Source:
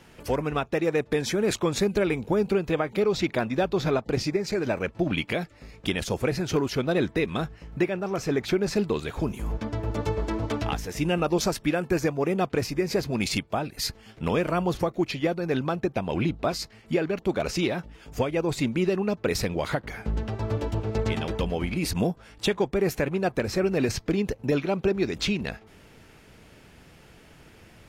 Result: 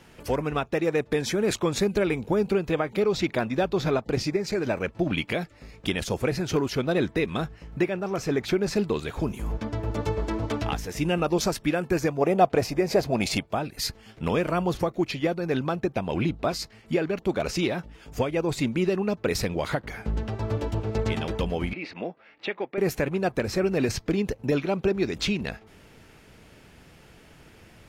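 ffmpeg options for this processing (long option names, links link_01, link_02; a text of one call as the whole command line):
ffmpeg -i in.wav -filter_complex "[0:a]asettb=1/sr,asplit=3[link_01][link_02][link_03];[link_01]atrim=end=12.214[link_04];[link_02]atrim=start=12.21:end=13.46,asetpts=PTS-STARTPTS,afade=type=in:duration=0.004:curve=qsin,afade=type=out:start_time=1.246:duration=0.004:curve=qsin,equalizer=frequency=670:width=1.9:gain=11[link_05];[link_03]atrim=start=13.456[link_06];[link_04][link_05]acrossfade=duration=0.004:curve1=hsin:curve2=qsin[link_07];[link_07][link_06]acrossfade=duration=0.004:curve1=qsin:curve2=hsin,asettb=1/sr,asplit=3[link_08][link_09][link_10];[link_08]atrim=end=21.734[link_11];[link_09]atrim=start=21.73:end=22.78,asetpts=PTS-STARTPTS,afade=type=in:duration=0.004:curve=qsin,afade=type=out:start_time=1.046:duration=0.004:curve=qsin,highpass=420,equalizer=frequency=440:width_type=q:width=4:gain=-5,equalizer=frequency=710:width_type=q:width=4:gain=-3,equalizer=frequency=1000:width_type=q:width=4:gain=-7,equalizer=frequency=1500:width_type=q:width=4:gain=-4,equalizer=frequency=2100:width_type=q:width=4:gain=3,equalizer=frequency=3300:width_type=q:width=4:gain=-7,lowpass=frequency=3400:width=0.5412,lowpass=frequency=3400:width=1.3066[link_12];[link_10]atrim=start=22.776[link_13];[link_11][link_12]acrossfade=duration=0.004:curve1=hsin:curve2=qsin[link_14];[link_14][link_13]acrossfade=duration=0.004:curve1=qsin:curve2=hsin" out.wav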